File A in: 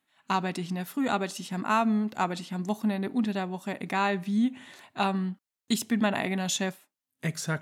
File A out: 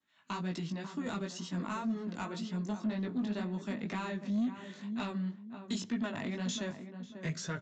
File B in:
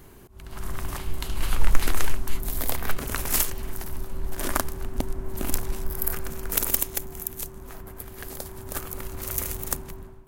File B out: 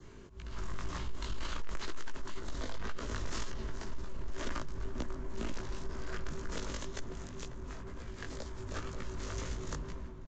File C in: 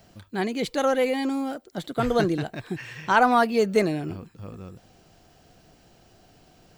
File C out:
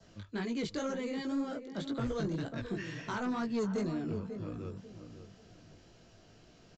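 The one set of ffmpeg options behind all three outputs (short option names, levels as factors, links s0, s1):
-filter_complex "[0:a]acrossover=split=250|6300[s0][s1][s2];[s0]acompressor=threshold=0.0398:ratio=4[s3];[s1]acompressor=threshold=0.0282:ratio=4[s4];[s2]acompressor=threshold=0.00891:ratio=4[s5];[s3][s4][s5]amix=inputs=3:normalize=0,flanger=delay=16.5:depth=3.7:speed=2,adynamicequalizer=threshold=0.001:dfrequency=2400:dqfactor=2.9:tfrequency=2400:tqfactor=2.9:attack=5:release=100:ratio=0.375:range=3:mode=cutabove:tftype=bell,acrossover=split=100|2300[s6][s7][s8];[s8]asoftclip=type=hard:threshold=0.0178[s9];[s6][s7][s9]amix=inputs=3:normalize=0,asplit=2[s10][s11];[s11]adelay=543,lowpass=f=1200:p=1,volume=0.316,asplit=2[s12][s13];[s13]adelay=543,lowpass=f=1200:p=1,volume=0.31,asplit=2[s14][s15];[s15]adelay=543,lowpass=f=1200:p=1,volume=0.31[s16];[s10][s12][s14][s16]amix=inputs=4:normalize=0,aresample=16000,asoftclip=type=tanh:threshold=0.0447,aresample=44100,equalizer=f=770:t=o:w=0.27:g=-9"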